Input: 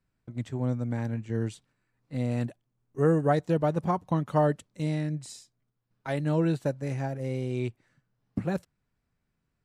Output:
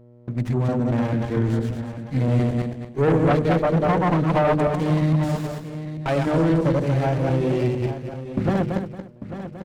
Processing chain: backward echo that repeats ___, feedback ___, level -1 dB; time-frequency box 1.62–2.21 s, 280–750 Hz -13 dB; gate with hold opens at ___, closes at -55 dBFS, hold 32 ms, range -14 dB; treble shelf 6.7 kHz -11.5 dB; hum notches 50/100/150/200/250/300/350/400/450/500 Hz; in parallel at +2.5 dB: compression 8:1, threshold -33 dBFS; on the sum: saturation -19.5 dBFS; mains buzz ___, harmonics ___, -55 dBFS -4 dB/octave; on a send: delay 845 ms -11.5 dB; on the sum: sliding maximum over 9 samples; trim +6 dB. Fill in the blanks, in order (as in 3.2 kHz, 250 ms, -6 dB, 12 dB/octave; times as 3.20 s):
114 ms, 44%, -48 dBFS, 120 Hz, 5